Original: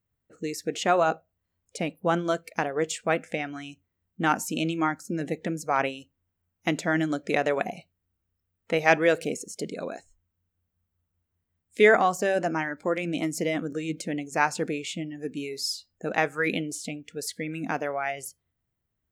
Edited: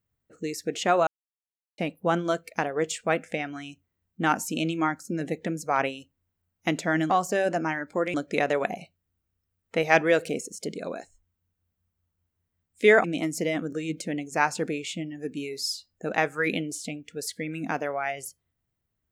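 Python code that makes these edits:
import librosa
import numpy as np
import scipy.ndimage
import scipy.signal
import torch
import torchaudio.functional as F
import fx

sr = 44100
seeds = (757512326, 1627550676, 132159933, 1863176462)

y = fx.edit(x, sr, fx.silence(start_s=1.07, length_s=0.71),
    fx.move(start_s=12.0, length_s=1.04, to_s=7.1), tone=tone)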